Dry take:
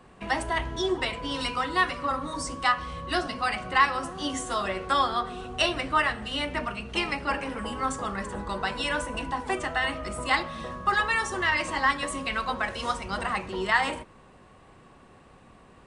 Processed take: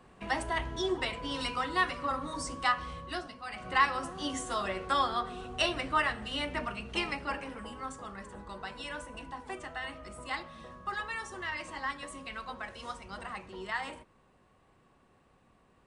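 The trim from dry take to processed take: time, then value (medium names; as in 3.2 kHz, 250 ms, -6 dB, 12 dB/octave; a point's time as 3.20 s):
2.90 s -4.5 dB
3.43 s -16 dB
3.70 s -4.5 dB
6.99 s -4.5 dB
7.91 s -12 dB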